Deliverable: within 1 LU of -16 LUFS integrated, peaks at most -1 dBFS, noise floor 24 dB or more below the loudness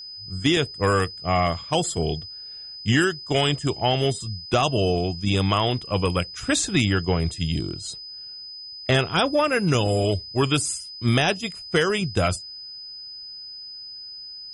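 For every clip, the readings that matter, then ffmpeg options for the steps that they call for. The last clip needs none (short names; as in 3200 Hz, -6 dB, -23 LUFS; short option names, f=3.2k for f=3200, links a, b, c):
steady tone 5000 Hz; tone level -36 dBFS; loudness -23.0 LUFS; peak -9.5 dBFS; loudness target -16.0 LUFS
-> -af "bandreject=f=5k:w=30"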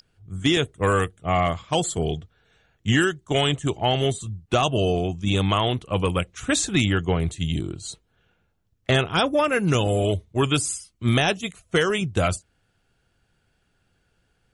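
steady tone none; loudness -23.0 LUFS; peak -9.5 dBFS; loudness target -16.0 LUFS
-> -af "volume=7dB"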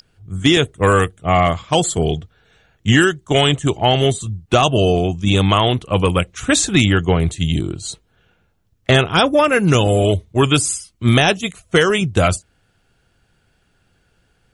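loudness -16.0 LUFS; peak -2.5 dBFS; noise floor -62 dBFS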